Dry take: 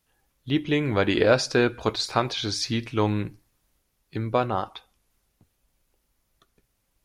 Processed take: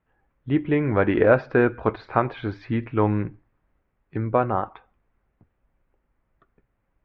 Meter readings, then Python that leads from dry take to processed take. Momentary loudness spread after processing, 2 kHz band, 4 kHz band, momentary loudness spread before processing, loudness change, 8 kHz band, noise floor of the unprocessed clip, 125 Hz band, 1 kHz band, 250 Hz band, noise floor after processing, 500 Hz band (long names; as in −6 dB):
12 LU, +0.5 dB, −18.0 dB, 10 LU, +1.5 dB, below −35 dB, −74 dBFS, +2.5 dB, +2.5 dB, +2.5 dB, −74 dBFS, +2.5 dB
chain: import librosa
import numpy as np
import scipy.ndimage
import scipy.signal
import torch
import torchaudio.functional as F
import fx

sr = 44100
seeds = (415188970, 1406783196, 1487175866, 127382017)

y = scipy.signal.sosfilt(scipy.signal.butter(4, 2000.0, 'lowpass', fs=sr, output='sos'), x)
y = F.gain(torch.from_numpy(y), 2.5).numpy()